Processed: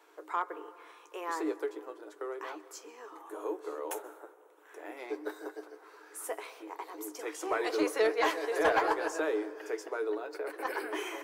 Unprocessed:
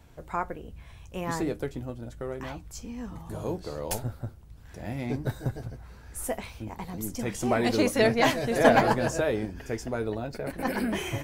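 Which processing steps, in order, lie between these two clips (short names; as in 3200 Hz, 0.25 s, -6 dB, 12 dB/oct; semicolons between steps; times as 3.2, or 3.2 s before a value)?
3.19–4.97 bell 4700 Hz -14.5 dB 0.43 oct; in parallel at -2 dB: compressor, threshold -39 dBFS, peak gain reduction 23.5 dB; on the sum: rippled Chebyshev high-pass 300 Hz, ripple 9 dB; soft clip -17.5 dBFS, distortion -19 dB; on a send at -16.5 dB: reverb RT60 2.3 s, pre-delay 0.117 s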